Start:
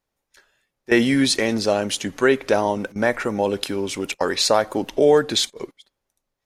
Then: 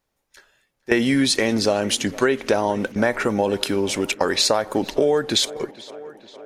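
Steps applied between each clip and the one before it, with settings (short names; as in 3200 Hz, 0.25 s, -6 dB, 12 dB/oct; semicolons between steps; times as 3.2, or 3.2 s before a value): tape echo 0.458 s, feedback 75%, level -22.5 dB, low-pass 4000 Hz; compressor 6:1, threshold -19 dBFS, peak gain reduction 8.5 dB; gain +4 dB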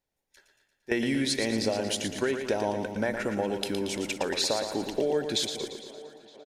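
bell 1200 Hz -9.5 dB 0.31 oct; on a send: feedback echo 0.115 s, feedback 55%, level -7.5 dB; on the sum: gain -9 dB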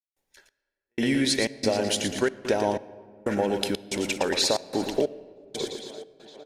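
step gate ".xx...xxx.xxxx" 92 bpm -60 dB; on a send at -18 dB: reverb RT60 2.6 s, pre-delay 3 ms; on the sum: gain +4 dB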